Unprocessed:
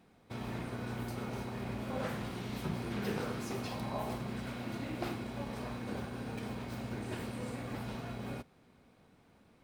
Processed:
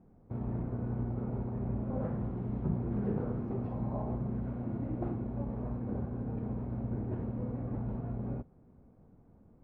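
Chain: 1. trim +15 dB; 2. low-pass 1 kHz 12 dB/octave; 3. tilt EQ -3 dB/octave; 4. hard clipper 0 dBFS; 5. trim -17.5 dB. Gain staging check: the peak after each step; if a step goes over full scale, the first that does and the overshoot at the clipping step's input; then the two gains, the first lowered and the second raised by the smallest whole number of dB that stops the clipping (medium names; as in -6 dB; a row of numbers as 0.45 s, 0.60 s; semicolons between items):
-7.0 dBFS, -7.5 dBFS, -3.5 dBFS, -3.5 dBFS, -21.0 dBFS; nothing clips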